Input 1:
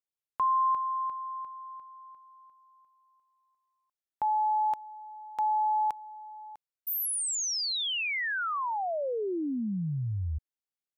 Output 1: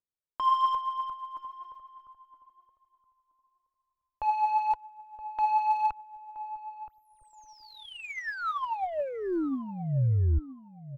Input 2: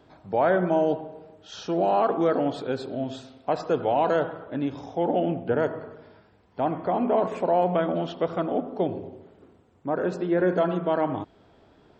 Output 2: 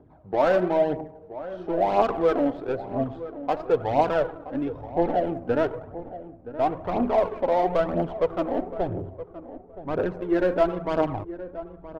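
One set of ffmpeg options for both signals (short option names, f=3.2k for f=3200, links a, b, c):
-filter_complex "[0:a]adynamicsmooth=sensitivity=1.5:basefreq=870,aphaser=in_gain=1:out_gain=1:delay=4:decay=0.5:speed=1:type=triangular,asubboost=boost=6:cutoff=72,asplit=2[a][b];[b]adelay=972,lowpass=f=1k:p=1,volume=-13dB,asplit=2[c][d];[d]adelay=972,lowpass=f=1k:p=1,volume=0.22,asplit=2[e][f];[f]adelay=972,lowpass=f=1k:p=1,volume=0.22[g];[c][e][g]amix=inputs=3:normalize=0[h];[a][h]amix=inputs=2:normalize=0"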